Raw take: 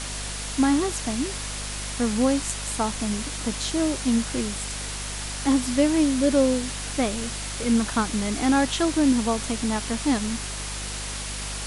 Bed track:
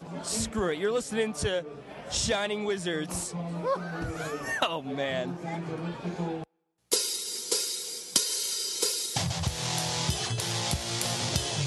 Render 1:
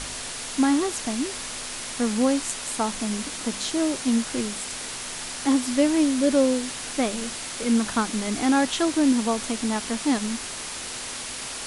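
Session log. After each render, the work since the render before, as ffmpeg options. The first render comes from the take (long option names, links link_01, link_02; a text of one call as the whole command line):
ffmpeg -i in.wav -af "bandreject=frequency=50:width_type=h:width=4,bandreject=frequency=100:width_type=h:width=4,bandreject=frequency=150:width_type=h:width=4,bandreject=frequency=200:width_type=h:width=4" out.wav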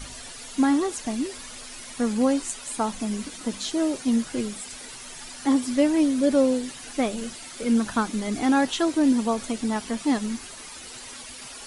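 ffmpeg -i in.wav -af "afftdn=noise_reduction=11:noise_floor=-34" out.wav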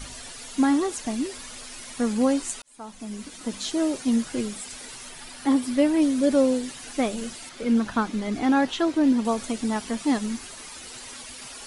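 ffmpeg -i in.wav -filter_complex "[0:a]asettb=1/sr,asplit=3[link_01][link_02][link_03];[link_01]atrim=end=5.094[link_04];[link_02]atrim=start=5.09:end=6.02,asetpts=PTS-STARTPTS,afade=type=in:duration=0.004:curve=qsin,afade=type=out:start_time=0.926:duration=0.004:curve=qsin,equalizer=frequency=6600:width_type=o:width=0.72:gain=-5.5[link_05];[link_03]atrim=start=6.016[link_06];[link_04][link_05]acrossfade=duration=0.004:curve1=hsin:curve2=qsin[link_07];[link_07][link_06]acrossfade=duration=0.004:curve1=qsin:curve2=hsin,asettb=1/sr,asplit=3[link_08][link_09][link_10];[link_08]atrim=end=7.494[link_11];[link_09]atrim=start=7.49:end=9.25,asetpts=PTS-STARTPTS,afade=type=in:duration=0.004:curve=qsin,afade=type=out:start_time=1.756:duration=0.004:curve=qsin,equalizer=frequency=9400:width=0.71:gain=-10[link_12];[link_10]atrim=start=9.246[link_13];[link_11][link_12]acrossfade=duration=0.004:curve1=hsin:curve2=qsin[link_14];[link_14][link_13]acrossfade=duration=0.004:curve1=qsin:curve2=hsin,asplit=2[link_15][link_16];[link_15]atrim=end=2.62,asetpts=PTS-STARTPTS,afade=type=out:start_time=2.616:duration=0.004:curve=hsin[link_17];[link_16]atrim=start=2.62,asetpts=PTS-STARTPTS,afade=type=in:duration=1.06[link_18];[link_17][link_18]concat=n=2:v=0:a=1" out.wav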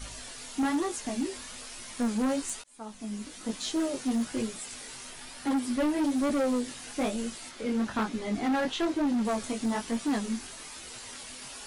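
ffmpeg -i in.wav -af "flanger=delay=17:depth=6.6:speed=1.1,volume=24dB,asoftclip=hard,volume=-24dB" out.wav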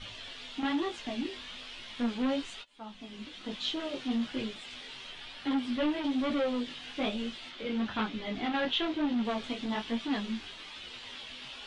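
ffmpeg -i in.wav -af "lowpass=frequency=3300:width_type=q:width=3.3,flanger=delay=9.8:depth=7.4:regen=-30:speed=0.38:shape=sinusoidal" out.wav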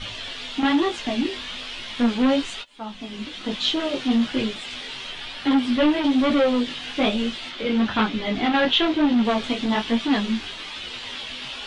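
ffmpeg -i in.wav -af "volume=11dB" out.wav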